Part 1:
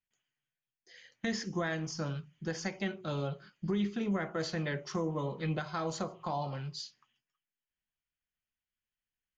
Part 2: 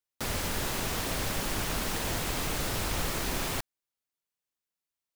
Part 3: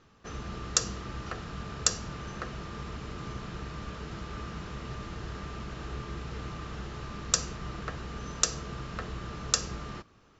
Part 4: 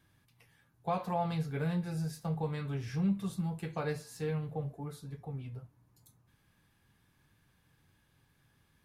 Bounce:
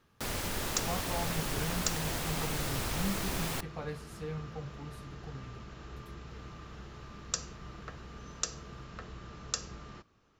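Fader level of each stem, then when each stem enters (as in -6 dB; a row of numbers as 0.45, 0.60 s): off, -3.5 dB, -8.0 dB, -5.0 dB; off, 0.00 s, 0.00 s, 0.00 s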